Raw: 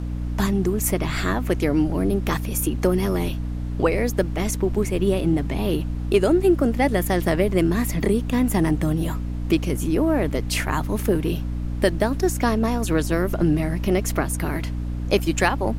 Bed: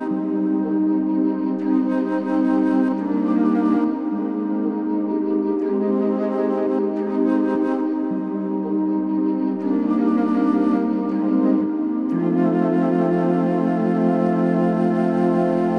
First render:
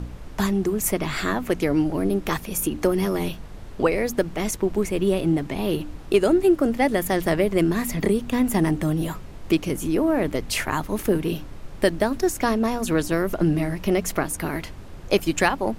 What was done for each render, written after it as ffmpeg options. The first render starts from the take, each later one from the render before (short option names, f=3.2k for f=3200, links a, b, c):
-af "bandreject=f=60:t=h:w=4,bandreject=f=120:t=h:w=4,bandreject=f=180:t=h:w=4,bandreject=f=240:t=h:w=4,bandreject=f=300:t=h:w=4"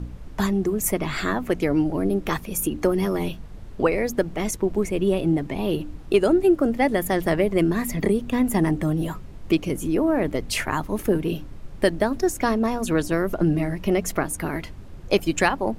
-af "afftdn=nr=6:nf=-38"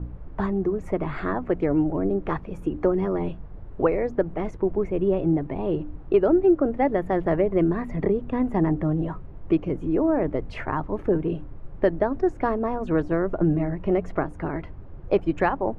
-af "lowpass=1.3k,equalizer=f=220:t=o:w=0.32:g=-7"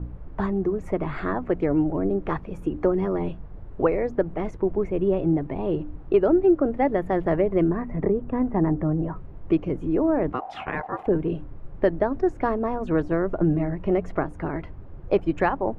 -filter_complex "[0:a]asettb=1/sr,asplit=3[a][b][c];[a]atrim=end=7.694[d];[b]atrim=start=7.69:end=9.16,asetpts=PTS-STARTPTS,afade=t=in:d=0.004:c=qsin,afade=t=out:st=1.466:d=0.004:c=qsin,lowpass=1.8k[e];[c]atrim=start=9.156[f];[d][e]acrossfade=d=0.004:c1=hsin:c2=qsin[g];[g][f]acrossfade=d=0.004:c1=qsin:c2=hsin,asplit=3[h][i][j];[h]afade=t=out:st=10.32:d=0.02[k];[i]aeval=exprs='val(0)*sin(2*PI*760*n/s)':c=same,afade=t=in:st=10.32:d=0.02,afade=t=out:st=11.06:d=0.02[l];[j]afade=t=in:st=11.06:d=0.02[m];[k][l][m]amix=inputs=3:normalize=0"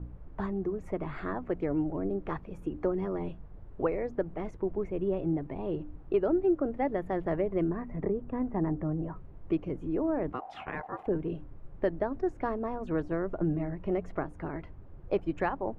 -af "volume=-8dB"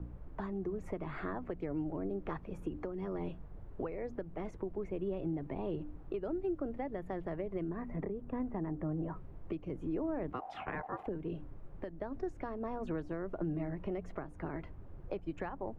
-filter_complex "[0:a]acrossover=split=170|2600[a][b][c];[a]acompressor=threshold=-42dB:ratio=4[d];[b]acompressor=threshold=-35dB:ratio=4[e];[c]acompressor=threshold=-60dB:ratio=4[f];[d][e][f]amix=inputs=3:normalize=0,alimiter=level_in=3dB:limit=-24dB:level=0:latency=1:release=400,volume=-3dB"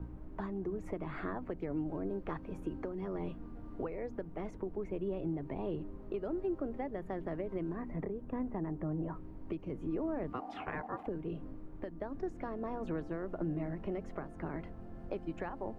-filter_complex "[1:a]volume=-33.5dB[a];[0:a][a]amix=inputs=2:normalize=0"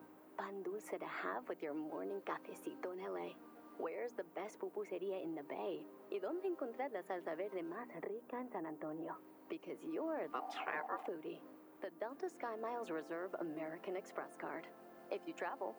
-af "highpass=360,aemphasis=mode=production:type=bsi"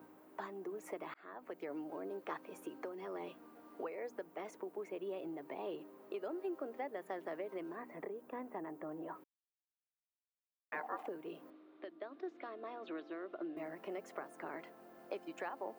-filter_complex "[0:a]asettb=1/sr,asplit=3[a][b][c];[a]atrim=end=11.504[d];[b]atrim=start=11.5:end=13.57,asetpts=PTS-STARTPTS,afade=t=in:d=0.004:c=qsin,afade=t=out:st=2.066:d=0.004:c=qsin,highpass=290,equalizer=f=330:t=q:w=4:g=5,equalizer=f=490:t=q:w=4:g=-6,equalizer=f=880:t=q:w=4:g=-10,equalizer=f=1.7k:t=q:w=4:g=-4,equalizer=f=3.7k:t=q:w=4:g=7,lowpass=f=3.9k:w=0.5412,lowpass=f=3.9k:w=1.3066[e];[c]atrim=start=13.566[f];[d][e]acrossfade=d=0.004:c1=hsin:c2=qsin[g];[g][f]acrossfade=d=0.004:c1=qsin:c2=hsin,asplit=4[h][i][j][k];[h]atrim=end=1.14,asetpts=PTS-STARTPTS,afade=t=out:st=1.136:d=0.004:c=hsin[l];[i]atrim=start=1.14:end=9.24,asetpts=PTS-STARTPTS,afade=t=in:d=0.49,afade=t=out:st=8.096:d=0.004:c=hsin[m];[j]atrim=start=9.24:end=10.72,asetpts=PTS-STARTPTS,volume=0[n];[k]atrim=start=10.72,asetpts=PTS-STARTPTS,afade=t=in:d=0.004:c=hsin[o];[l][m][n][o]concat=n=4:v=0:a=1"